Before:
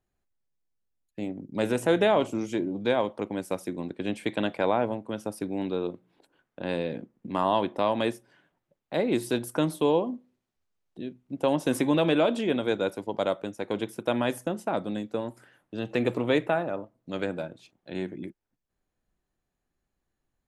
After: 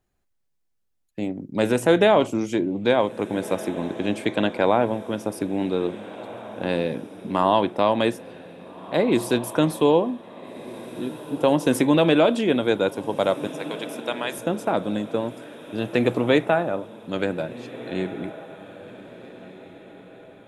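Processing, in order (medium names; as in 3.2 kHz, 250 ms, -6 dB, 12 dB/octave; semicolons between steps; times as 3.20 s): 13.47–14.39 s: high-pass 1.4 kHz 6 dB/octave; echo that smears into a reverb 1684 ms, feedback 42%, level -15.5 dB; trim +5.5 dB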